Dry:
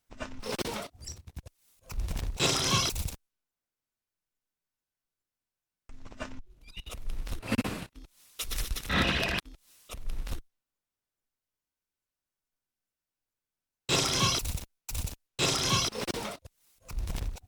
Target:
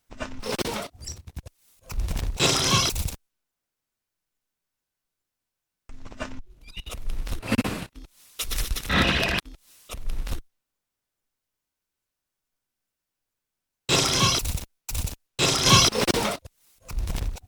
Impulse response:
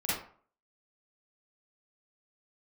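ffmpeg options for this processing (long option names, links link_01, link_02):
-filter_complex "[0:a]asettb=1/sr,asplit=3[link_01][link_02][link_03];[link_01]atrim=end=15.664[link_04];[link_02]atrim=start=15.66:end=16.42,asetpts=PTS-STARTPTS,afade=type=in:duration=0.004:curve=qsin,afade=type=out:start_time=0.756:duration=0.004:curve=qsin,acontrast=43[link_05];[link_03]atrim=start=16.416[link_06];[link_04][link_05]acrossfade=duration=0.004:curve1=hsin:curve2=qsin[link_07];[link_07][link_06]acrossfade=duration=0.004:curve1=qsin:curve2=hsin,volume=5.5dB"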